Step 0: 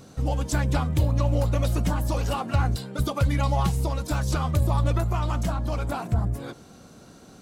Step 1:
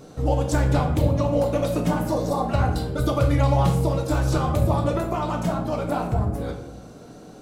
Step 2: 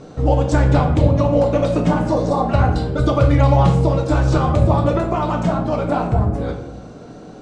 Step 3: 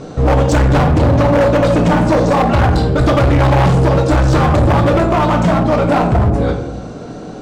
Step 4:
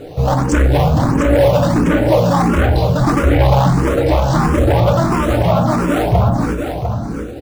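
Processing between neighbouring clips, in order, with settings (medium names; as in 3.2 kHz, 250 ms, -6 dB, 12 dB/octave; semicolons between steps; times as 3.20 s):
spectral replace 2.06–2.41 s, 1.2–3.4 kHz; peaking EQ 490 Hz +8 dB 2.1 oct; on a send at -2.5 dB: reverberation RT60 0.75 s, pre-delay 7 ms; on the sum: trim -2 dB
steep low-pass 8.7 kHz 36 dB/octave; treble shelf 5.7 kHz -11 dB; trim +6 dB
hard clipper -17 dBFS, distortion -7 dB; trim +8.5 dB
in parallel at -9 dB: decimation with a swept rate 12×, swing 160% 1.4 Hz; on the sum: delay 700 ms -7 dB; barber-pole phaser +1.5 Hz; trim -1.5 dB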